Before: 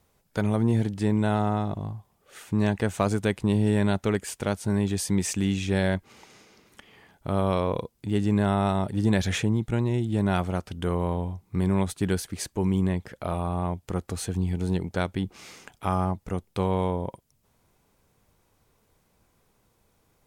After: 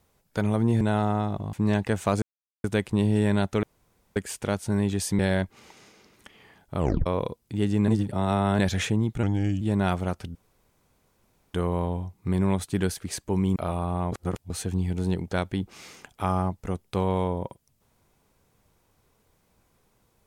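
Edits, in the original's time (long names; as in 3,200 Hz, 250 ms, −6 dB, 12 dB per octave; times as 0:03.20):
0:00.81–0:01.18: remove
0:01.90–0:02.46: remove
0:03.15: splice in silence 0.42 s
0:04.14: splice in room tone 0.53 s
0:05.17–0:05.72: remove
0:07.31: tape stop 0.28 s
0:08.41–0:09.12: reverse
0:09.76–0:10.08: play speed 84%
0:10.82: splice in room tone 1.19 s
0:12.84–0:13.19: remove
0:13.75–0:14.13: reverse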